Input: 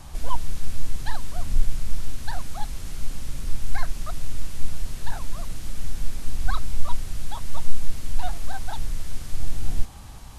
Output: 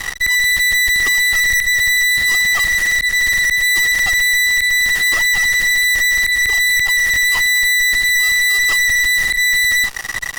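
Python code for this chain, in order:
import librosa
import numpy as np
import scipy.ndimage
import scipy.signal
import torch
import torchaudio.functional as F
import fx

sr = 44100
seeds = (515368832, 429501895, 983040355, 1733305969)

y = fx.band_invert(x, sr, width_hz=2000)
y = fx.auto_swell(y, sr, attack_ms=230.0)
y = fx.fuzz(y, sr, gain_db=36.0, gate_db=-40.0)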